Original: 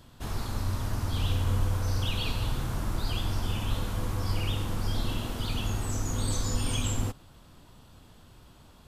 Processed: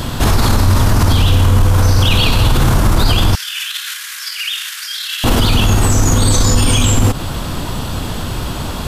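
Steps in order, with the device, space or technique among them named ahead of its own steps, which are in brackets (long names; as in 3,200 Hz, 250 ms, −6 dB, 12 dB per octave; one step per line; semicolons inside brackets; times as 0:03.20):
loud club master (downward compressor 2 to 1, threshold −33 dBFS, peak gain reduction 7 dB; hard clipping −24 dBFS, distortion −36 dB; boost into a limiter +35 dB)
0:03.35–0:05.24: elliptic high-pass filter 1,600 Hz, stop band 80 dB
level −2.5 dB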